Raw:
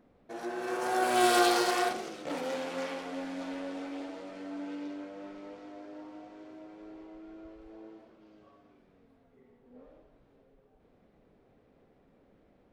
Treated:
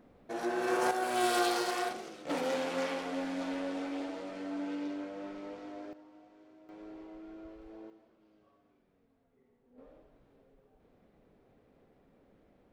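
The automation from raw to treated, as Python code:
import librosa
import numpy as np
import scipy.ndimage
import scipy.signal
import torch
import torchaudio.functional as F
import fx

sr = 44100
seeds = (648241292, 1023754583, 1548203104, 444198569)

y = fx.gain(x, sr, db=fx.steps((0.0, 3.5), (0.91, -5.0), (2.29, 2.0), (5.93, -10.0), (6.69, 0.0), (7.9, -8.5), (9.78, -1.0)))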